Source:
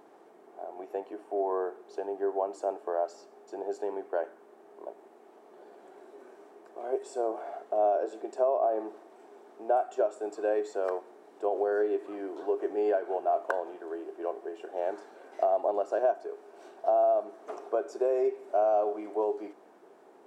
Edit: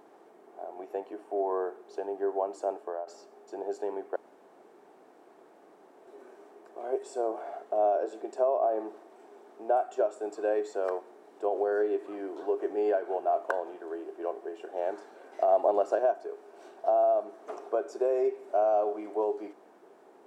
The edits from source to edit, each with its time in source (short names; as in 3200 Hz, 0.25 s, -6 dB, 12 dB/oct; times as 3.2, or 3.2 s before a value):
2.78–3.07 fade out, to -12.5 dB
4.16–6.07 room tone
15.48–15.95 gain +3.5 dB